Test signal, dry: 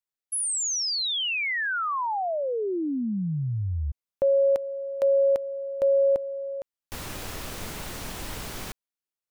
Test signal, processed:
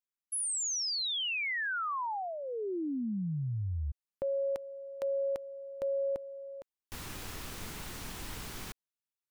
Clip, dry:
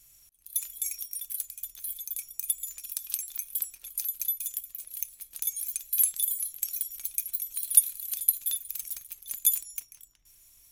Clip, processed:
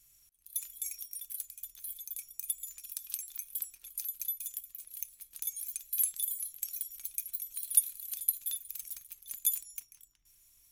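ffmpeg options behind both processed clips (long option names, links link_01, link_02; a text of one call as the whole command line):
ffmpeg -i in.wav -af "equalizer=frequency=590:width_type=o:width=0.64:gain=-6,volume=-6dB" out.wav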